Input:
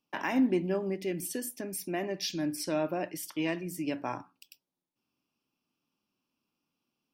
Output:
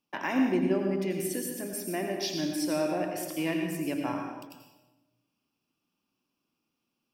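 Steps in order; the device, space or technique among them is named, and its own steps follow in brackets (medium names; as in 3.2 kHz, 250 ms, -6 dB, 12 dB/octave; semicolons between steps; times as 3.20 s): bathroom (reverberation RT60 1.1 s, pre-delay 79 ms, DRR 2 dB)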